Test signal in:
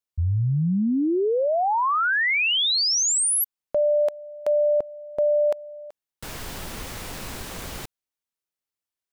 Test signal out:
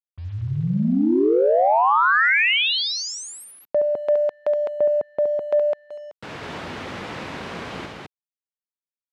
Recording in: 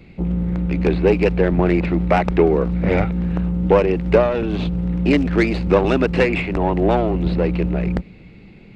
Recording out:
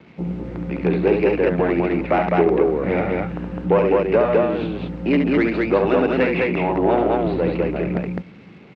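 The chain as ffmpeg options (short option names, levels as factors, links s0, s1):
-filter_complex "[0:a]aecho=1:1:69.97|207:0.501|0.794,dynaudnorm=f=110:g=17:m=1.68,asplit=2[s0][s1];[s1]asoftclip=type=tanh:threshold=0.2,volume=0.282[s2];[s0][s2]amix=inputs=2:normalize=0,acrusher=bits=6:mix=0:aa=0.5,highpass=140,lowpass=2900,volume=0.668"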